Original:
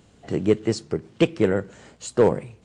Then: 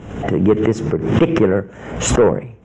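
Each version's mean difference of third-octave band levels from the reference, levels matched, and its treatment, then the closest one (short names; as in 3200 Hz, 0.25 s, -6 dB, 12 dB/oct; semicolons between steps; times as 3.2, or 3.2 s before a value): 7.5 dB: in parallel at -7.5 dB: sine folder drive 6 dB, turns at -6.5 dBFS; on the sum: running mean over 10 samples; backwards sustainer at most 63 dB/s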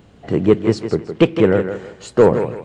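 4.0 dB: bell 8000 Hz -11.5 dB 1.6 oct; soft clip -8.5 dBFS, distortion -20 dB; thinning echo 0.161 s, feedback 30%, high-pass 170 Hz, level -8.5 dB; gain +7.5 dB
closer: second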